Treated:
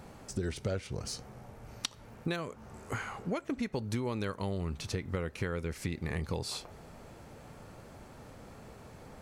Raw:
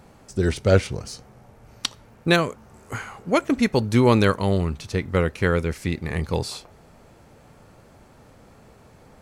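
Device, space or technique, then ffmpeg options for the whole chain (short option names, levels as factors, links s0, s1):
serial compression, peaks first: -filter_complex "[0:a]acompressor=threshold=0.0501:ratio=6,acompressor=threshold=0.0112:ratio=1.5,asettb=1/sr,asplit=3[s0][s1][s2];[s0]atrim=end=2.484[s3];[s1]atrim=start=2.48:end=3.81,asetpts=PTS-STARTPTS,afade=t=in:d=0.004:c=qsin,afade=t=out:st=1.326:d=0.004:c=qsin,highshelf=f=8500:g=-5[s4];[s2]atrim=start=3.806[s5];[s3][s4]acrossfade=d=0.004:c1=hsin:c2=qsin[s6];[s6][s5]acrossfade=d=0.004:c1=qsin:c2=hsin"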